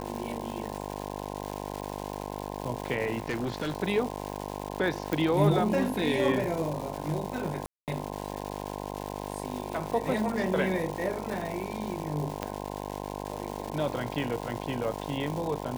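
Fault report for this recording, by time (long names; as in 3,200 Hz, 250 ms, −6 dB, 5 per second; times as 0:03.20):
mains buzz 50 Hz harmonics 21 −37 dBFS
surface crackle 460 per second −34 dBFS
0:03.18–0:03.74: clipping −26.5 dBFS
0:05.13: click
0:07.66–0:07.88: drop-out 218 ms
0:12.43: click −15 dBFS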